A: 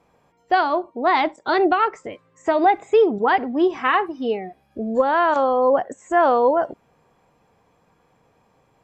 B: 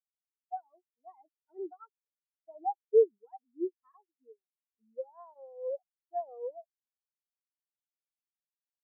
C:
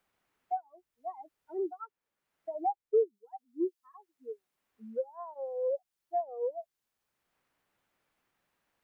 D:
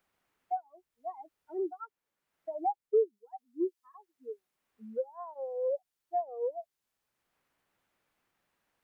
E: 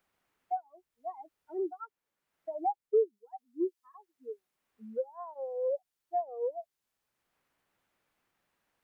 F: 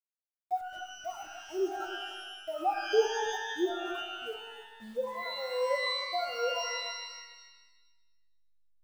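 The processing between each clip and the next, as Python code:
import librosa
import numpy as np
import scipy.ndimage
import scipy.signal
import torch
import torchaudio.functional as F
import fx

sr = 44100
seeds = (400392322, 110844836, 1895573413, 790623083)

y1 = fx.spectral_expand(x, sr, expansion=4.0)
y1 = y1 * 10.0 ** (-6.0 / 20.0)
y2 = fx.band_squash(y1, sr, depth_pct=70)
y2 = y2 * 10.0 ** (4.5 / 20.0)
y3 = fx.wow_flutter(y2, sr, seeds[0], rate_hz=2.1, depth_cents=21.0)
y4 = y3
y5 = fx.delta_hold(y4, sr, step_db=-53.5)
y5 = y5 + 10.0 ** (-13.0 / 20.0) * np.pad(y5, (int(290 * sr / 1000.0), 0))[:len(y5)]
y5 = fx.rev_shimmer(y5, sr, seeds[1], rt60_s=1.2, semitones=12, shimmer_db=-2, drr_db=5.0)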